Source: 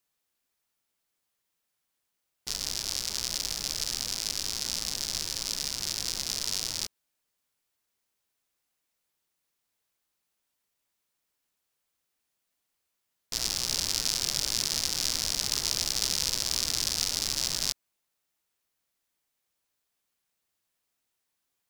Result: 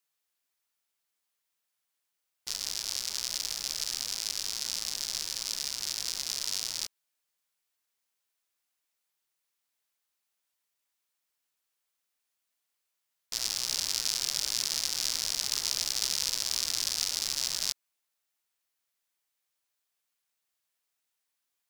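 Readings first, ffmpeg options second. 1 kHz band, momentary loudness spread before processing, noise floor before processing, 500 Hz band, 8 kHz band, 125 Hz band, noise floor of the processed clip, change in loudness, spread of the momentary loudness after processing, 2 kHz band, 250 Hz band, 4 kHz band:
-3.5 dB, 5 LU, -81 dBFS, -6.5 dB, -1.5 dB, -11.5 dB, -83 dBFS, -1.5 dB, 5 LU, -2.0 dB, -9.5 dB, -1.5 dB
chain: -af "lowshelf=f=480:g=-10.5,volume=-1.5dB"

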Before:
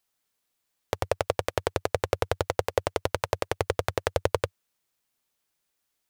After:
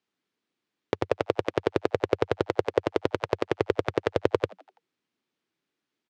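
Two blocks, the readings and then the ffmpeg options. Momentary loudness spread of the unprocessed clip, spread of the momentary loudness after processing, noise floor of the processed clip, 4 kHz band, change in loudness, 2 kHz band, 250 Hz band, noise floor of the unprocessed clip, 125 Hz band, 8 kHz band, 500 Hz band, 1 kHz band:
3 LU, 3 LU, under -85 dBFS, -3.0 dB, +1.5 dB, -0.5 dB, +8.5 dB, -79 dBFS, -2.0 dB, under -10 dB, +2.5 dB, -1.5 dB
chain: -filter_complex "[0:a]highpass=190,lowpass=3.7k,lowshelf=f=450:t=q:w=1.5:g=8,asplit=2[a][b];[b]asplit=4[c][d][e][f];[c]adelay=83,afreqshift=93,volume=-23dB[g];[d]adelay=166,afreqshift=186,volume=-28.4dB[h];[e]adelay=249,afreqshift=279,volume=-33.7dB[i];[f]adelay=332,afreqshift=372,volume=-39.1dB[j];[g][h][i][j]amix=inputs=4:normalize=0[k];[a][k]amix=inputs=2:normalize=0"

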